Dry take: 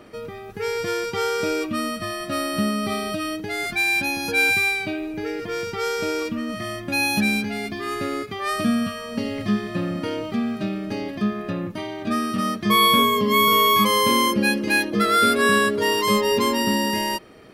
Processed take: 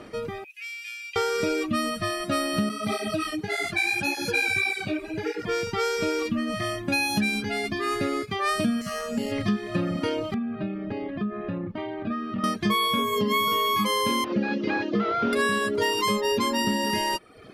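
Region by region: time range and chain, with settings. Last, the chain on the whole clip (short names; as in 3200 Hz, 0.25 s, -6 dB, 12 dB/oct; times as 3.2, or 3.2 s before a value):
0.44–1.16 high shelf 7400 Hz +11.5 dB + compressor 2:1, threshold -28 dBFS + ladder high-pass 2400 Hz, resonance 85%
2.69–5.47 split-band echo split 1900 Hz, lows 0.203 s, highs 0.144 s, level -13.5 dB + tape flanging out of phase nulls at 1.7 Hz, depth 7.2 ms
8.81–9.32 compressor 2:1, threshold -29 dBFS + comb 4.9 ms, depth 45% + careless resampling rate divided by 6×, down none, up hold
10.34–12.44 compressor 3:1, threshold -28 dBFS + air absorption 400 m
14.24–15.33 delta modulation 32 kbps, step -35.5 dBFS + HPF 130 Hz + air absorption 160 m
whole clip: LPF 11000 Hz 12 dB/oct; reverb removal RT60 0.7 s; compressor, threshold -24 dBFS; gain +3 dB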